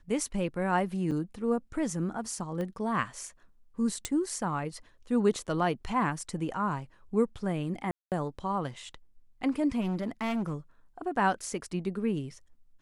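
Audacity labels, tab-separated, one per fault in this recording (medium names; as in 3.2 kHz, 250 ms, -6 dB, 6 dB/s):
1.110000	1.110000	dropout 5 ms
2.610000	2.610000	pop -24 dBFS
4.050000	4.050000	pop -16 dBFS
7.910000	8.120000	dropout 208 ms
9.800000	10.540000	clipped -27.5 dBFS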